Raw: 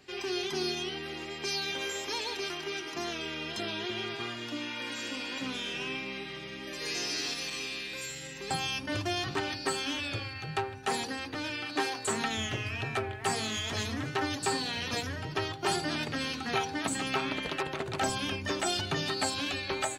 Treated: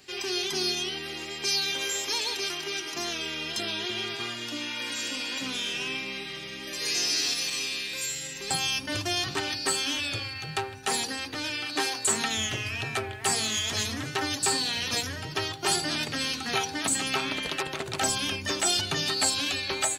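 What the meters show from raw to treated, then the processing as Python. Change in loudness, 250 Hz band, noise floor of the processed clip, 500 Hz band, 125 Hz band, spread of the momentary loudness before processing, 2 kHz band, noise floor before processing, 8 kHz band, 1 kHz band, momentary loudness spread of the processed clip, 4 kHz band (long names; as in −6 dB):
+5.0 dB, 0.0 dB, −39 dBFS, 0.0 dB, 0.0 dB, 5 LU, +3.5 dB, −42 dBFS, +10.0 dB, +1.0 dB, 7 LU, +6.5 dB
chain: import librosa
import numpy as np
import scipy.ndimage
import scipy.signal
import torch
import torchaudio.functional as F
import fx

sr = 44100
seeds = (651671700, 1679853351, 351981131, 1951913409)

y = fx.high_shelf(x, sr, hz=3400.0, db=12.0)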